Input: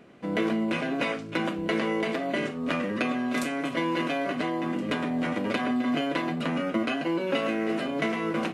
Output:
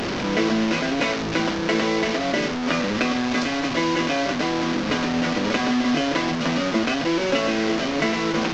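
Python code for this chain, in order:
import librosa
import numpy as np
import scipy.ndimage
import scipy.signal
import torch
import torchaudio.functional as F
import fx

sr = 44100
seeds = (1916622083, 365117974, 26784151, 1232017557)

y = fx.delta_mod(x, sr, bps=32000, step_db=-25.0)
y = F.gain(torch.from_numpy(y), 5.0).numpy()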